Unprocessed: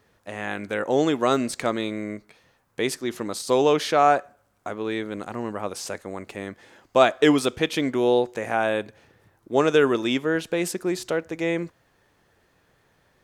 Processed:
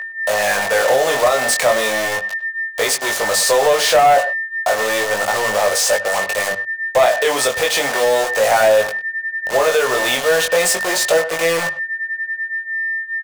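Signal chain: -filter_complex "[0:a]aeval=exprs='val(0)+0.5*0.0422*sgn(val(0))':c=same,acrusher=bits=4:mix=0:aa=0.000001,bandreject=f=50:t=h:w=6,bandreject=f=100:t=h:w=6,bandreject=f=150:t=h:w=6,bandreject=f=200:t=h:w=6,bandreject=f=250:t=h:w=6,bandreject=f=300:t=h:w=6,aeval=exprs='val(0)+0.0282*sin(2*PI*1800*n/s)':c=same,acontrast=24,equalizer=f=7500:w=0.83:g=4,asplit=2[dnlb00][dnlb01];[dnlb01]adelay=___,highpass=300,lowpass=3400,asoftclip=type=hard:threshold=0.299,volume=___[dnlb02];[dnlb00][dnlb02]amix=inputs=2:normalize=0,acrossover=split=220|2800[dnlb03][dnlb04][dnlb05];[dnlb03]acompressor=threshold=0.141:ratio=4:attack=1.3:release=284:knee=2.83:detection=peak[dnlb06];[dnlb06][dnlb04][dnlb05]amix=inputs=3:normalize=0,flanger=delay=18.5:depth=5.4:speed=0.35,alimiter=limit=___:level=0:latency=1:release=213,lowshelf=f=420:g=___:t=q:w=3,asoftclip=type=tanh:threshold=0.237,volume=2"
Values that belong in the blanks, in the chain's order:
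100, 0.178, 0.355, -10.5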